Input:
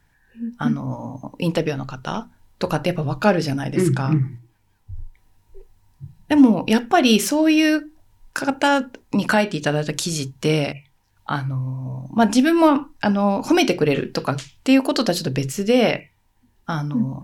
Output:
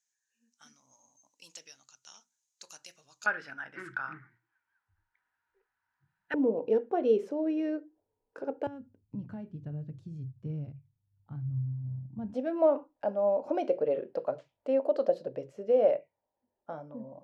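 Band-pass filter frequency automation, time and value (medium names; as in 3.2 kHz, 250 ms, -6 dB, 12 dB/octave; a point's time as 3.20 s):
band-pass filter, Q 6.4
6.6 kHz
from 3.26 s 1.5 kHz
from 6.34 s 460 Hz
from 8.67 s 110 Hz
from 12.34 s 570 Hz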